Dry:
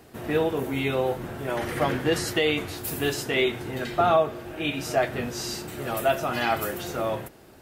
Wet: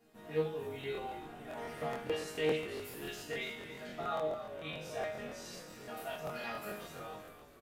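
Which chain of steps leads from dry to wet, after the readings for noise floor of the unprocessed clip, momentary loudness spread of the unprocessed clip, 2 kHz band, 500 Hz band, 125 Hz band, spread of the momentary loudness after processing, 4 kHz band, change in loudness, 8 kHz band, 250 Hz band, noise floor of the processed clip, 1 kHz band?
−51 dBFS, 8 LU, −14.0 dB, −12.5 dB, −15.5 dB, 11 LU, −14.5 dB, −13.5 dB, −15.5 dB, −15.5 dB, −55 dBFS, −15.0 dB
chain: flanger 0.69 Hz, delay 8.7 ms, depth 7.3 ms, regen +41%
resonators tuned to a chord D#3 sus4, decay 0.59 s
echo with shifted repeats 284 ms, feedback 53%, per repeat −56 Hz, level −12 dB
regular buffer underruns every 0.14 s, samples 1,024, repeat, from 0:00.79
highs frequency-modulated by the lows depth 0.14 ms
level +8 dB

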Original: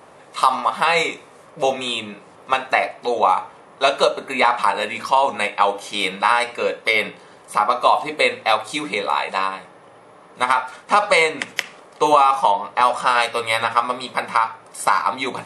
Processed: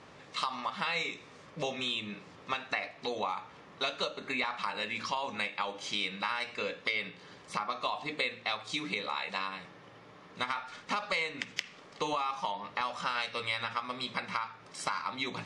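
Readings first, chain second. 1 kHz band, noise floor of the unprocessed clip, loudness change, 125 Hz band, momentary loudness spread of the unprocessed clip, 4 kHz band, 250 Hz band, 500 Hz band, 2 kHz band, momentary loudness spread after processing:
−18.0 dB, −47 dBFS, −15.5 dB, −7.5 dB, 9 LU, −10.0 dB, −10.5 dB, −18.5 dB, −13.0 dB, 9 LU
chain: low-pass filter 6,200 Hz 24 dB per octave
parametric band 700 Hz −11.5 dB 2.2 octaves
downward compressor 3 to 1, threshold −33 dBFS, peak gain reduction 12.5 dB

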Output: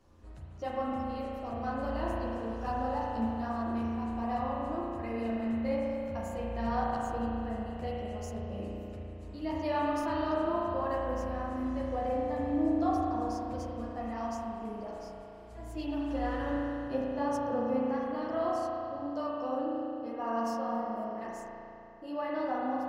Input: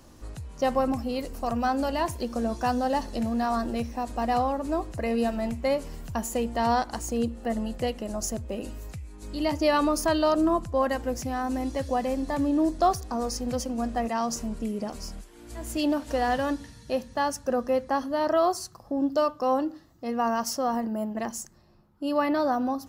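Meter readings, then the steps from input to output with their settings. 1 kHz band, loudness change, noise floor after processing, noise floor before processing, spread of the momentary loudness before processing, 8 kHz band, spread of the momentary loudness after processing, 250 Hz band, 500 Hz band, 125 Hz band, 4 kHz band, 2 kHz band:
−6.5 dB, −6.5 dB, −47 dBFS, −51 dBFS, 11 LU, −19.5 dB, 10 LU, −5.5 dB, −6.5 dB, −3.0 dB, −13.5 dB, −8.0 dB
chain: high-shelf EQ 5,100 Hz −11.5 dB
multi-voice chorus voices 6, 1.2 Hz, delay 12 ms, depth 3 ms
spring reverb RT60 3 s, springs 35 ms, chirp 75 ms, DRR −4 dB
level −9 dB

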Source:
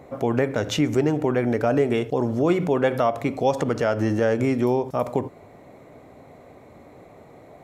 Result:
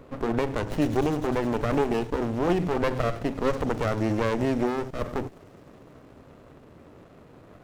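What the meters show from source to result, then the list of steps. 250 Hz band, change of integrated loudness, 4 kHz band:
−3.5 dB, −4.0 dB, −5.0 dB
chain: stylus tracing distortion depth 0.093 ms
delay with a high-pass on its return 101 ms, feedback 84%, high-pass 4,300 Hz, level −9 dB
windowed peak hold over 33 samples
level −1 dB

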